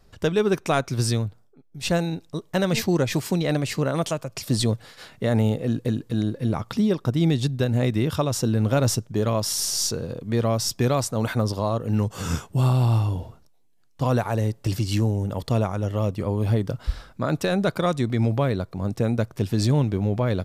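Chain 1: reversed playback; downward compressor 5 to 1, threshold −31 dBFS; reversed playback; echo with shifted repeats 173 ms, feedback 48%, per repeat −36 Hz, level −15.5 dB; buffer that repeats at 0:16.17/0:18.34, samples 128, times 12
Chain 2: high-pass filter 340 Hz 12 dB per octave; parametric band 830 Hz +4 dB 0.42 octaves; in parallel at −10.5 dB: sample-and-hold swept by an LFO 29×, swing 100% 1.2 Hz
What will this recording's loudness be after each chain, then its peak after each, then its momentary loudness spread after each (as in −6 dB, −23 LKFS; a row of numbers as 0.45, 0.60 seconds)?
−34.5, −27.0 LKFS; −19.5, −5.5 dBFS; 4, 8 LU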